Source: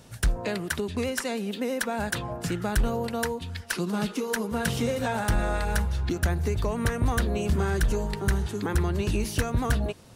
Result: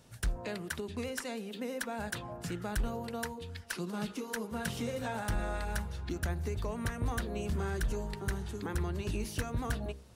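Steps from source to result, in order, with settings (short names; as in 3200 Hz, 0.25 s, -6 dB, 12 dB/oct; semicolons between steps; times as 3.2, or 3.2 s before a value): de-hum 66.63 Hz, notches 12; gain -8.5 dB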